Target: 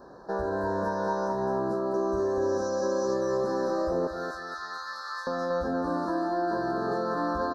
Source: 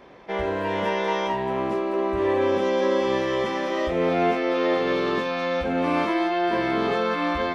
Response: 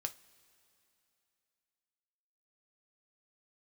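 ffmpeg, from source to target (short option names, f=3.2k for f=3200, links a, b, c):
-filter_complex "[0:a]asettb=1/sr,asplit=3[a][b][c];[a]atrim=end=1.944[d];[b]atrim=start=1.94:end=3.14,asetpts=PTS-STARTPTS,afade=t=in:d=0.004:c=qsin,afade=t=out:st=1.196:d=0.004:c=qsin,equalizer=f=6.1k:t=o:w=0.48:g=14.5[e];[c]atrim=start=3.136[f];[d][e]acrossfade=d=0.004:c1=hsin:c2=qsin[g];[g][f]acrossfade=d=0.004:c1=qsin:c2=hsin,asettb=1/sr,asplit=3[h][i][j];[h]atrim=end=4.074[k];[i]atrim=start=4.07:end=5.27,asetpts=PTS-STARTPTS,afade=t=in:d=0.004:c=qsin,afade=t=out:st=1.196:d=0.004:c=qsin,highpass=f=1.3k:w=0.5412,highpass=f=1.3k:w=1.3066[l];[j]atrim=start=5.266[m];[k][l]acrossfade=d=0.004:c1=hsin:c2=qsin[n];[n][m]acrossfade=d=0.004:c1=qsin:c2=hsin,acompressor=threshold=-26dB:ratio=6,asuperstop=centerf=2600:order=20:qfactor=1.2,aecho=1:1:235|470|705|940:0.398|0.147|0.0545|0.0202"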